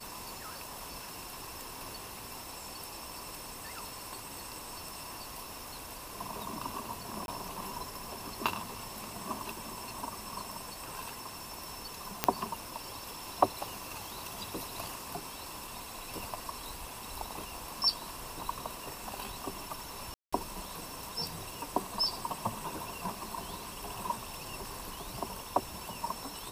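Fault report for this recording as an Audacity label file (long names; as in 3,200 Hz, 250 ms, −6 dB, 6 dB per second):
7.260000	7.280000	drop-out 21 ms
12.240000	12.240000	click −8 dBFS
20.140000	20.320000	drop-out 185 ms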